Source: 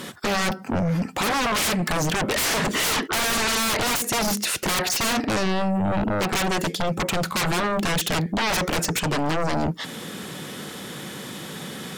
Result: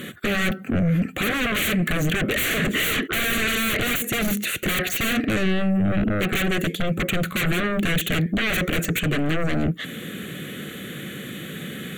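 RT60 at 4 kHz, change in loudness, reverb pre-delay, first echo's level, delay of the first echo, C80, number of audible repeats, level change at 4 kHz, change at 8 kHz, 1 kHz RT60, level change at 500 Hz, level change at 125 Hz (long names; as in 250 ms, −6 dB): no reverb audible, +0.5 dB, no reverb audible, no echo audible, no echo audible, no reverb audible, no echo audible, −1.5 dB, −5.5 dB, no reverb audible, −1.0 dB, +3.0 dB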